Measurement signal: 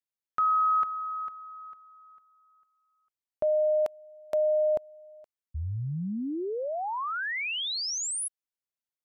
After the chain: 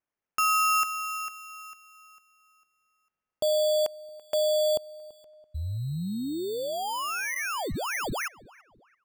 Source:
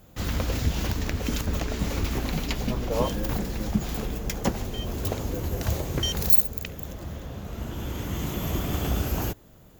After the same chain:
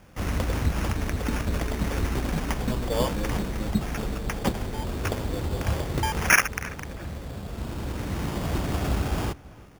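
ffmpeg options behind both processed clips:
-filter_complex "[0:a]acrusher=samples=11:mix=1:aa=0.000001,asplit=2[a][b];[b]adelay=334,lowpass=f=2.5k:p=1,volume=-21dB,asplit=2[c][d];[d]adelay=334,lowpass=f=2.5k:p=1,volume=0.38,asplit=2[e][f];[f]adelay=334,lowpass=f=2.5k:p=1,volume=0.38[g];[a][c][e][g]amix=inputs=4:normalize=0,acontrast=68,volume=-6dB"

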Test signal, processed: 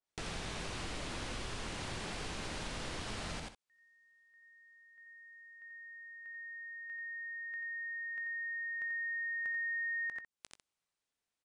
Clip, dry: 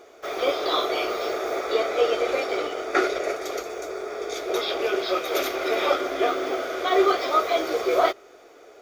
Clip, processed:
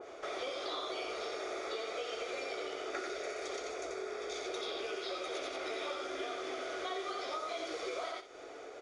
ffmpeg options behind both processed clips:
-filter_complex "[0:a]asplit=2[a][b];[b]aecho=0:1:87:0.596[c];[a][c]amix=inputs=2:normalize=0,acrossover=split=1400|5200[d][e][f];[d]acompressor=threshold=-30dB:ratio=4[g];[e]acompressor=threshold=-38dB:ratio=4[h];[f]acompressor=threshold=-43dB:ratio=4[i];[g][h][i]amix=inputs=3:normalize=0,highshelf=f=6.3k:g=-6,asplit=2[j][k];[k]aecho=0:1:18|63:0.126|0.224[l];[j][l]amix=inputs=2:normalize=0,aresample=22050,aresample=44100,acompressor=threshold=-54dB:ratio=2,adynamicequalizer=threshold=0.002:dfrequency=2100:dqfactor=0.7:tfrequency=2100:tqfactor=0.7:attack=5:release=100:ratio=0.375:range=2:mode=boostabove:tftype=highshelf,volume=4.5dB"

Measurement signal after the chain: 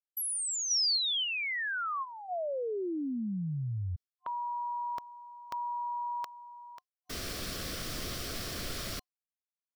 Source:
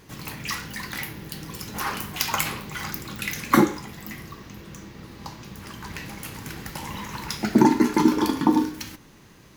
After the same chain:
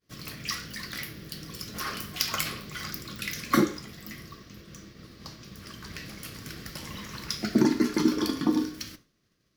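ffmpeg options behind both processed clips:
-af "agate=range=-33dB:threshold=-39dB:ratio=3:detection=peak,superequalizer=9b=0.282:13b=1.41:14b=2,volume=-5dB"

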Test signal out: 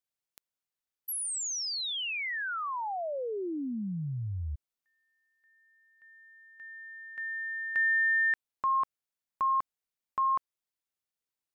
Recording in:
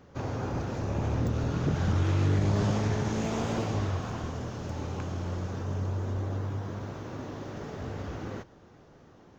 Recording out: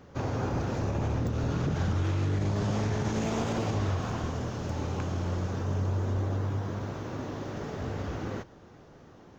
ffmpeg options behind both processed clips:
-af "alimiter=limit=-23.5dB:level=0:latency=1:release=52,volume=2.5dB"

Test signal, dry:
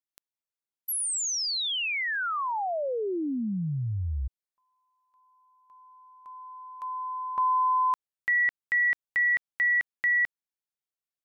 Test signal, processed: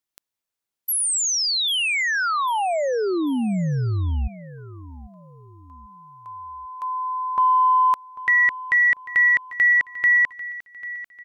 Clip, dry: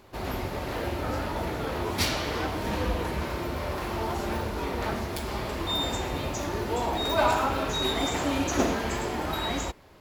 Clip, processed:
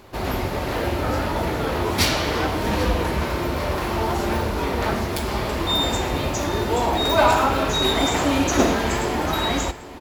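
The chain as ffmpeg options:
-af "acontrast=86,aecho=1:1:794|1588|2382:0.141|0.0579|0.0237"

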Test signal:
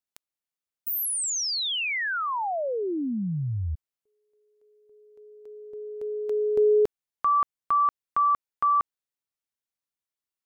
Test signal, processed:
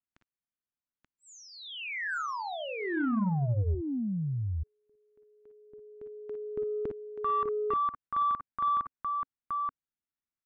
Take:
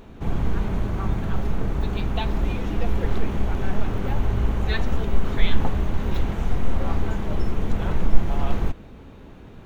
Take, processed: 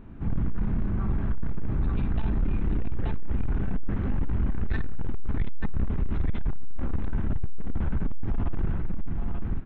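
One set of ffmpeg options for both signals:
-af "firequalizer=gain_entry='entry(270,0);entry(460,-11);entry(1500,-5);entry(4900,-24)':delay=0.05:min_phase=1,aecho=1:1:49|58|881:0.282|0.376|0.708,aresample=16000,asoftclip=type=tanh:threshold=-18.5dB,aresample=44100"

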